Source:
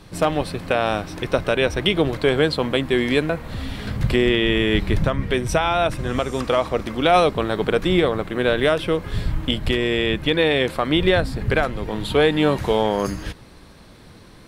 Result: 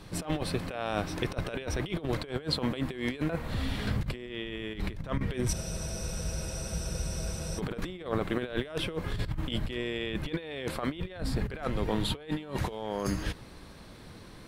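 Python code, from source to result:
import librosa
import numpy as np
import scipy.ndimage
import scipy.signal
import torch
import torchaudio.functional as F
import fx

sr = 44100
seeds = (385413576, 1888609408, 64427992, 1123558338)

y = fx.over_compress(x, sr, threshold_db=-24.0, ratio=-0.5)
y = fx.spec_freeze(y, sr, seeds[0], at_s=5.54, hold_s=2.03)
y = y * librosa.db_to_amplitude(-7.5)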